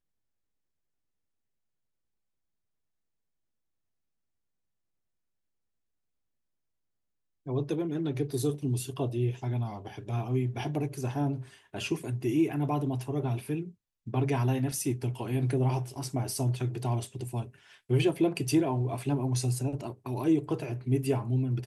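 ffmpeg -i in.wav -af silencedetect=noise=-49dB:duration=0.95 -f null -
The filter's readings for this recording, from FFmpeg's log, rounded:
silence_start: 0.00
silence_end: 7.46 | silence_duration: 7.46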